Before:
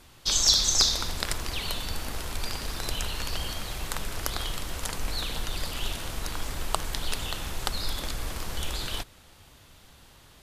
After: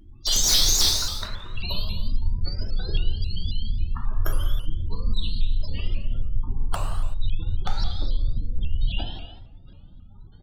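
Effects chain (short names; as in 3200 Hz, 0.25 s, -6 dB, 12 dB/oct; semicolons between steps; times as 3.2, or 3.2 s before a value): octaver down 2 oct, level +3 dB; spectral gate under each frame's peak -15 dB strong; 0.91–1.55 rippled Chebyshev low-pass 3900 Hz, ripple 9 dB; overloaded stage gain 23.5 dB; speakerphone echo 0.17 s, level -17 dB; non-linear reverb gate 0.4 s falling, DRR -1.5 dB; shaped vibrato saw up 3.7 Hz, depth 160 cents; gain +4 dB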